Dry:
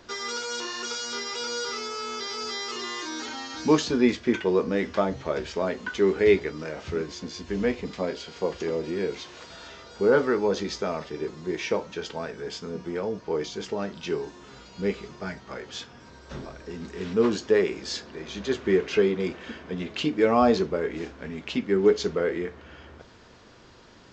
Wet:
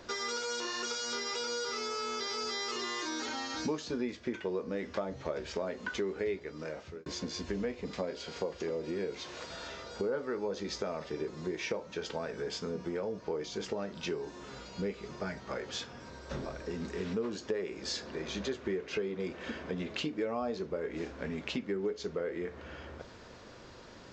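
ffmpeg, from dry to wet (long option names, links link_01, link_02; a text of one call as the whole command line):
ffmpeg -i in.wav -filter_complex "[0:a]asplit=2[link_01][link_02];[link_01]atrim=end=7.06,asetpts=PTS-STARTPTS,afade=type=out:start_time=6.31:duration=0.75[link_03];[link_02]atrim=start=7.06,asetpts=PTS-STARTPTS,afade=type=in:duration=0.004:curve=hsin[link_04];[link_03][link_04]concat=n=2:v=0:a=1,equalizer=frequency=550:width_type=o:width=0.38:gain=4.5,acompressor=threshold=-33dB:ratio=5,equalizer=frequency=3100:width_type=o:width=0.24:gain=-2.5" out.wav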